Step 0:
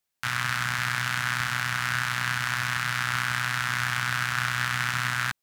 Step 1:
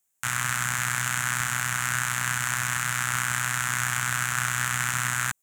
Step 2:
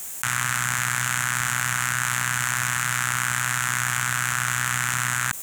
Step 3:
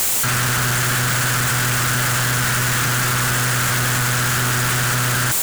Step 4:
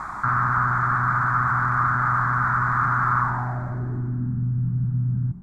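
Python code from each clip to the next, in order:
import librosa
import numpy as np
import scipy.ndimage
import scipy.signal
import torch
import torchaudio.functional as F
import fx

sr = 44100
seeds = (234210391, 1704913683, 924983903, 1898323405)

y1 = fx.high_shelf_res(x, sr, hz=5900.0, db=7.0, q=3.0)
y2 = fx.env_flatten(y1, sr, amount_pct=100)
y3 = np.sign(y2) * np.sqrt(np.mean(np.square(y2)))
y3 = y3 * librosa.db_to_amplitude(6.5)
y4 = fx.filter_sweep_lowpass(y3, sr, from_hz=1200.0, to_hz=180.0, start_s=3.18, end_s=4.48, q=3.6)
y4 = fx.fixed_phaser(y4, sr, hz=1200.0, stages=4)
y4 = y4 * librosa.db_to_amplitude(-4.0)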